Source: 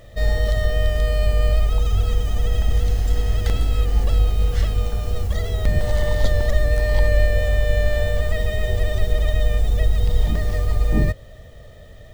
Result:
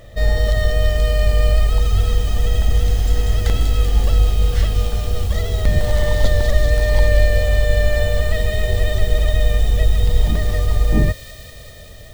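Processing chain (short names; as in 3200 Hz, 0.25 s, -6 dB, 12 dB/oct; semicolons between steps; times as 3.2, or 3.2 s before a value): thin delay 0.193 s, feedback 81%, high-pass 3100 Hz, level -4.5 dB; gain +3 dB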